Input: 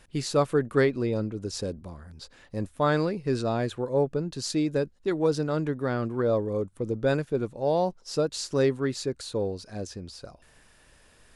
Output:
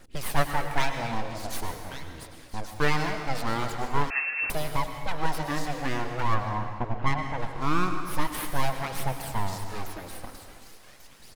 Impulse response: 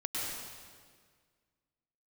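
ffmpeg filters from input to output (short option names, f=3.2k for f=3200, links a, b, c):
-filter_complex "[0:a]equalizer=f=240:w=3.9:g=10,acrossover=split=420|760[a][b][c];[a]acompressor=threshold=-39dB:ratio=4[d];[c]aecho=1:1:1139|2278|3417|4556:0.266|0.0905|0.0308|0.0105[e];[d][b][e]amix=inputs=3:normalize=0,aeval=exprs='abs(val(0))':c=same,aphaser=in_gain=1:out_gain=1:delay=4.1:decay=0.38:speed=0.44:type=triangular,asettb=1/sr,asplit=3[f][g][h];[f]atrim=end=6.344[i];[g]atrim=start=6.34:end=7.38,asetpts=PTS-STARTPTS,afade=t=in:d=0.004:c=qsin,afade=t=out:st=1.036:d=0.004:c=qsin,adynamicsmooth=sensitivity=3:basefreq=1.9k[j];[h]atrim=start=7.376[k];[i][j]acrossfade=d=0.004:c1=hsin:c2=qsin[l];[l][k]acrossfade=d=0.004:c1=qsin:c2=hsin,asplit=2[m][n];[1:a]atrim=start_sample=2205[o];[n][o]afir=irnorm=-1:irlink=0,volume=-7dB[p];[m][p]amix=inputs=2:normalize=0,asettb=1/sr,asplit=3[q][r][s];[q]atrim=end=4.104[t];[r]atrim=start=4.1:end=4.5,asetpts=PTS-STARTPTS,afade=t=in:d=0.004:c=qsin,afade=t=out:st=0.396:d=0.004:c=qsin,lowpass=f=2.3k:t=q:w=0.5098,lowpass=f=2.3k:t=q:w=0.6013,lowpass=f=2.3k:t=q:w=0.9,lowpass=f=2.3k:t=q:w=2.563,afreqshift=-2700[u];[s]atrim=start=4.496[v];[t][u]acrossfade=d=0.004:c1=hsin:c2=qsin[w];[w][v]acrossfade=d=0.004:c1=qsin:c2=hsin"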